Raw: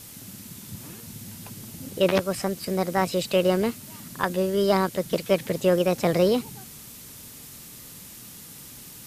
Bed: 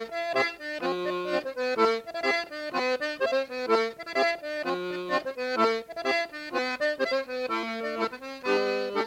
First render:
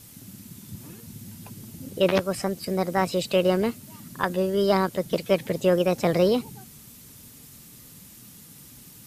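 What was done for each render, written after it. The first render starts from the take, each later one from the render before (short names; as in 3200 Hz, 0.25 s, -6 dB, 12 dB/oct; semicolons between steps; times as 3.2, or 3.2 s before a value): denoiser 6 dB, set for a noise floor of -44 dBFS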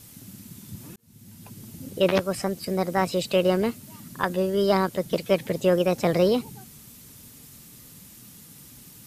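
0.96–1.89 fade in equal-power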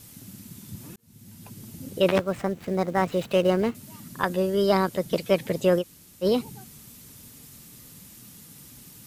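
2.11–3.75 median filter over 9 samples; 5.81–6.24 room tone, crossfade 0.06 s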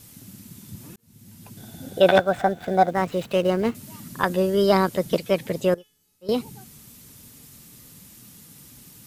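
1.57–2.91 small resonant body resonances 730/1500/3500 Hz, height 17 dB, ringing for 25 ms; 3.65–5.17 gain +3 dB; 5.74–6.29 resonator 430 Hz, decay 0.5 s, mix 90%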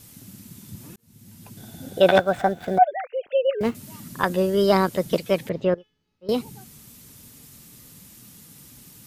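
2.78–3.61 sine-wave speech; 5.49–6.29 air absorption 250 m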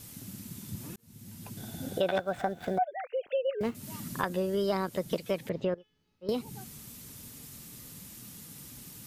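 compressor 3:1, threshold -30 dBFS, peak gain reduction 15 dB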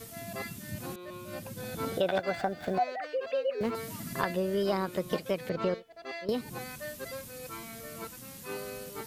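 add bed -14 dB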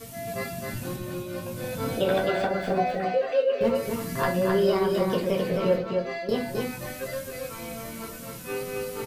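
echo 0.262 s -4 dB; shoebox room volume 120 m³, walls furnished, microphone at 1.7 m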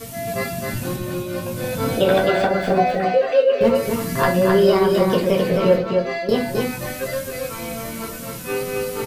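gain +7.5 dB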